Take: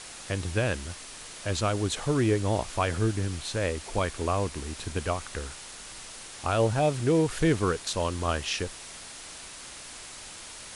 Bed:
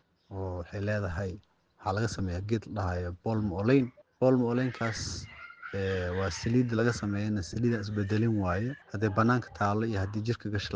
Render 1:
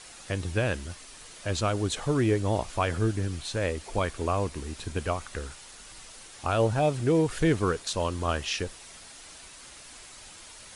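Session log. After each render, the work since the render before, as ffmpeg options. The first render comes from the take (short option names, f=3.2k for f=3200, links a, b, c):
-af "afftdn=nr=6:nf=-44"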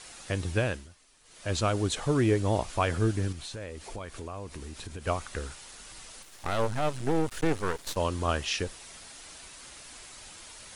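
-filter_complex "[0:a]asettb=1/sr,asplit=3[a][b][c];[a]atrim=end=3.324[d];[b]atrim=start=3.32:end=5.07,asetpts=PTS-STARTPTS,afade=t=in:d=0.004:c=qsin,afade=t=out:st=1.746:d=0.004:c=qsin,acompressor=threshold=-37dB:ratio=4:attack=3.2:release=140:knee=1:detection=peak[e];[c]atrim=start=5.066[f];[d][e]acrossfade=d=0.004:c1=hsin:c2=qsin[g];[g][f]acrossfade=d=0.004:c1=qsin:c2=hsin,asettb=1/sr,asplit=3[h][i][j];[h]atrim=end=6.224[k];[i]atrim=start=6.22:end=7.97,asetpts=PTS-STARTPTS,afade=t=in:d=0.004:c=qsin,afade=t=out:st=1.746:d=0.004:c=qsin,aeval=exprs='max(val(0),0)':c=same[l];[j]atrim=start=7.966[m];[k][l]acrossfade=d=0.004:c1=hsin:c2=qsin[n];[n][m]acrossfade=d=0.004:c1=qsin:c2=hsin,asplit=3[o][p][q];[o]atrim=end=0.9,asetpts=PTS-STARTPTS,afade=t=out:st=0.59:d=0.31:silence=0.177828[r];[p]atrim=start=0.9:end=1.23,asetpts=PTS-STARTPTS,volume=-15dB[s];[q]atrim=start=1.23,asetpts=PTS-STARTPTS,afade=t=in:d=0.31:silence=0.177828[t];[r][s][t]concat=n=3:v=0:a=1"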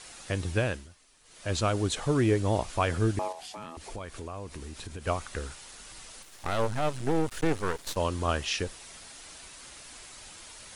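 -filter_complex "[0:a]asettb=1/sr,asplit=3[a][b][c];[a]atrim=end=3.194[d];[b]atrim=start=3.19:end=3.77,asetpts=PTS-STARTPTS,afade=t=in:d=0.004:c=qsin,afade=t=out:st=0.576:d=0.004:c=qsin,aeval=exprs='val(0)*sin(2*PI*740*n/s)':c=same[e];[c]atrim=start=3.766[f];[d][e]acrossfade=d=0.004:c1=hsin:c2=qsin[g];[g][f]acrossfade=d=0.004:c1=qsin:c2=hsin"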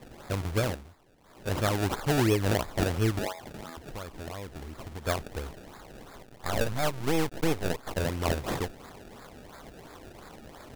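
-af "acrusher=samples=29:mix=1:aa=0.000001:lfo=1:lforange=29:lforate=2.9"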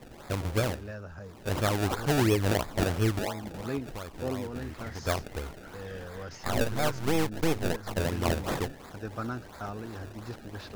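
-filter_complex "[1:a]volume=-10dB[a];[0:a][a]amix=inputs=2:normalize=0"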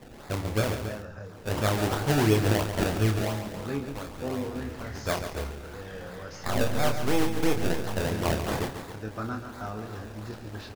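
-filter_complex "[0:a]asplit=2[a][b];[b]adelay=28,volume=-6dB[c];[a][c]amix=inputs=2:normalize=0,asplit=2[d][e];[e]aecho=0:1:139.9|277:0.355|0.251[f];[d][f]amix=inputs=2:normalize=0"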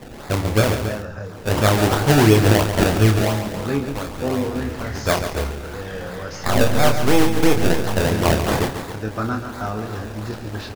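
-af "volume=9.5dB,alimiter=limit=-3dB:level=0:latency=1"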